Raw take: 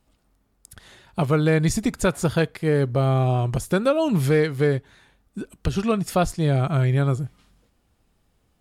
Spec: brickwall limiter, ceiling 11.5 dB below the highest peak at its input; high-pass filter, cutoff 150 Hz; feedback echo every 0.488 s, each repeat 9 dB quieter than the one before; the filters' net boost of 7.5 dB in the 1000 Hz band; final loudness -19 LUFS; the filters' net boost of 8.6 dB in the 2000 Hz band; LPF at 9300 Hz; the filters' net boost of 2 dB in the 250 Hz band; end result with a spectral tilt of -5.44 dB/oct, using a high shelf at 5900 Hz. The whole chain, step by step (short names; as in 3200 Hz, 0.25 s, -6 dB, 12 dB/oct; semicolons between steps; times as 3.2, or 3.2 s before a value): HPF 150 Hz; LPF 9300 Hz; bell 250 Hz +4 dB; bell 1000 Hz +8 dB; bell 2000 Hz +7.5 dB; high shelf 5900 Hz +6 dB; limiter -13 dBFS; feedback echo 0.488 s, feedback 35%, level -9 dB; gain +5.5 dB